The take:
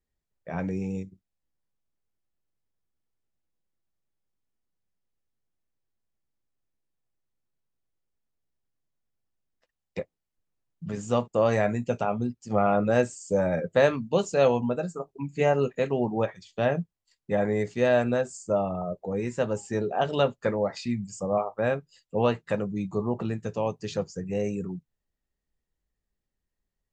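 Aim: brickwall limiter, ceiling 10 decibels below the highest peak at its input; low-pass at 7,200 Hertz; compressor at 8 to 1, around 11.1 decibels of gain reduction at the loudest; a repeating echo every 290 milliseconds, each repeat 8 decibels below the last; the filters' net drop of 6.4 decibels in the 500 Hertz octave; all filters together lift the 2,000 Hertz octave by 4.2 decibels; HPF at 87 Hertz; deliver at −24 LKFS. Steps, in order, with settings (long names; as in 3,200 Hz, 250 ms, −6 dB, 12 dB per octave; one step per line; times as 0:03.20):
high-pass filter 87 Hz
low-pass filter 7,200 Hz
parametric band 500 Hz −8 dB
parametric band 2,000 Hz +6 dB
downward compressor 8 to 1, threshold −31 dBFS
brickwall limiter −26 dBFS
repeating echo 290 ms, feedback 40%, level −8 dB
level +14 dB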